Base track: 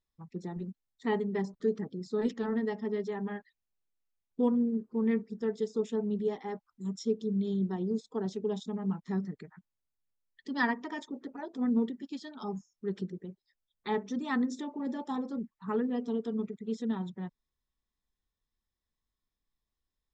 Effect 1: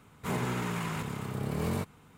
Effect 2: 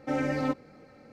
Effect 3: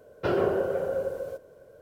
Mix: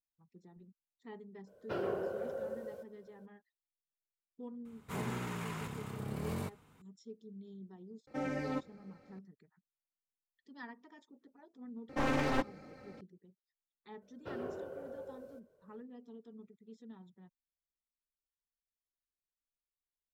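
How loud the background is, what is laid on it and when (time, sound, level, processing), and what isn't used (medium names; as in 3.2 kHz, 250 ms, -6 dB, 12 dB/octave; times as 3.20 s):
base track -19.5 dB
1.46 s: add 3 -11 dB, fades 0.02 s + bass shelf 64 Hz -11.5 dB
4.65 s: add 1 -7 dB
8.07 s: add 2 -8.5 dB
11.89 s: add 2 -0.5 dB + one-sided wavefolder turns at -31 dBFS
14.02 s: add 3 -17.5 dB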